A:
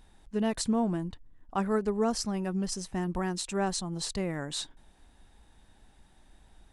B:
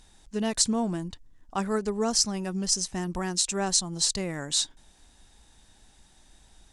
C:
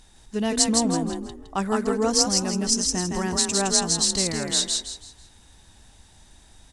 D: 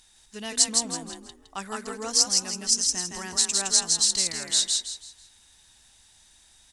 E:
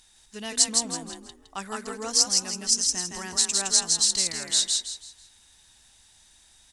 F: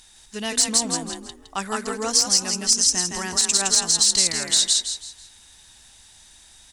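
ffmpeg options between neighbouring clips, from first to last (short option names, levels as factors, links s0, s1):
-af "equalizer=f=6400:w=0.67:g=13"
-filter_complex "[0:a]asplit=5[s0][s1][s2][s3][s4];[s1]adelay=163,afreqshift=37,volume=0.708[s5];[s2]adelay=326,afreqshift=74,volume=0.226[s6];[s3]adelay=489,afreqshift=111,volume=0.0724[s7];[s4]adelay=652,afreqshift=148,volume=0.0232[s8];[s0][s5][s6][s7][s8]amix=inputs=5:normalize=0,volume=1.41"
-af "tiltshelf=f=1100:g=-8,volume=0.447"
-af anull
-af "aeval=exprs='clip(val(0),-1,0.251)':c=same,alimiter=level_in=4.22:limit=0.891:release=50:level=0:latency=1,volume=0.531"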